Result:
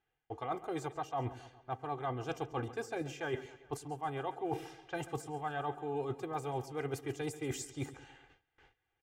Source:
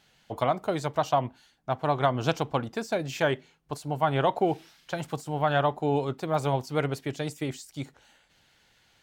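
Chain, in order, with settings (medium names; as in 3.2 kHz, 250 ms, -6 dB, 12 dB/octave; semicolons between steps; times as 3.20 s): comb 2.5 ms, depth 81%; reverse; compression 10:1, threshold -36 dBFS, peak gain reduction 21.5 dB; reverse; peaking EQ 4.2 kHz -9 dB 0.58 oct; two-band feedback delay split 470 Hz, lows 104 ms, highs 137 ms, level -15 dB; gate with hold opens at -51 dBFS; level-controlled noise filter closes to 2.5 kHz, open at -36 dBFS; trim +1.5 dB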